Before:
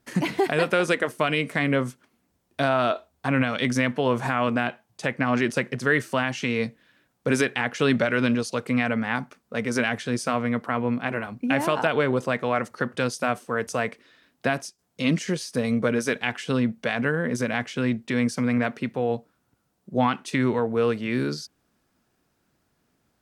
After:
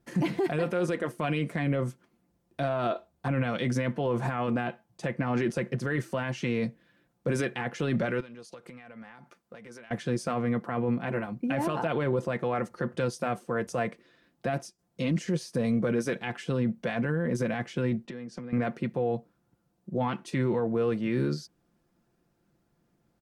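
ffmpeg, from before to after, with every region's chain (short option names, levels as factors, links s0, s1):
-filter_complex "[0:a]asettb=1/sr,asplit=3[s0][s1][s2];[s0]atrim=end=8.204[s3];[s1]atrim=start=8.2:end=9.91,asetpts=PTS-STARTPTS,afade=t=in:d=0.004:c=qsin,afade=t=out:st=1.706:d=0.004:c=qsin,lowshelf=f=410:g=-11,acompressor=threshold=0.0112:ratio=12:attack=3.2:release=140:knee=1:detection=peak[s4];[s2]atrim=start=9.906[s5];[s3][s4]acrossfade=d=0.004:c1=hsin:c2=qsin[s6];[s6][s5]acrossfade=d=0.004:c1=qsin:c2=hsin,asettb=1/sr,asplit=3[s7][s8][s9];[s7]atrim=end=18.054[s10];[s8]atrim=start=18.05:end=18.53,asetpts=PTS-STARTPTS,afade=t=in:d=0.004:c=qsin,afade=t=out:st=0.476:d=0.004:c=qsin,highpass=130,lowpass=6100,bandreject=f=2200:w=15,acompressor=threshold=0.02:ratio=8:attack=3.2:release=140:knee=1:detection=peak[s11];[s9]atrim=start=18.526[s12];[s10][s11]acrossfade=d=0.004:c1=hsin:c2=qsin[s13];[s13][s12]acrossfade=d=0.004:c1=qsin:c2=hsin,tiltshelf=f=830:g=5,aecho=1:1:5.8:0.47,alimiter=limit=0.168:level=0:latency=1:release=12,volume=0.631"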